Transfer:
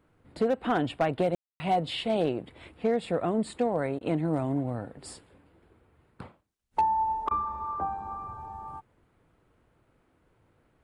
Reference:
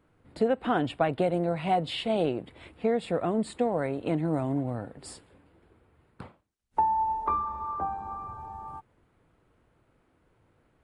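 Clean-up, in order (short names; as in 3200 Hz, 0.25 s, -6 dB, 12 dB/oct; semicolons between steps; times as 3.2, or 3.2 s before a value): clip repair -18 dBFS; room tone fill 1.35–1.6; interpolate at 3.99/7.29, 18 ms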